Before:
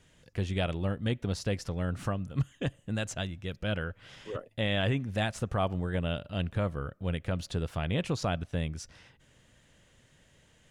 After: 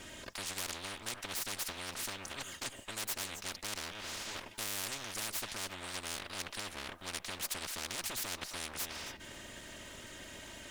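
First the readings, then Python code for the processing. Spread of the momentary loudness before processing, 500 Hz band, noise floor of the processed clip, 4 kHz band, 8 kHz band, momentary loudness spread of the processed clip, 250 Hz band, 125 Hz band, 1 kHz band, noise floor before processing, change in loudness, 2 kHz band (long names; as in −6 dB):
7 LU, −14.0 dB, −53 dBFS, +0.5 dB, +9.0 dB, 10 LU, −16.5 dB, −22.5 dB, −6.0 dB, −64 dBFS, −6.5 dB, −3.0 dB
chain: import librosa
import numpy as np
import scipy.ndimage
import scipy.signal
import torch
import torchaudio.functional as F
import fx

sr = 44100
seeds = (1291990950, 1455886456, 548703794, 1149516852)

p1 = fx.lower_of_two(x, sr, delay_ms=3.2)
p2 = p1 + fx.echo_single(p1, sr, ms=267, db=-22.0, dry=0)
p3 = fx.spectral_comp(p2, sr, ratio=10.0)
y = p3 * 10.0 ** (-1.0 / 20.0)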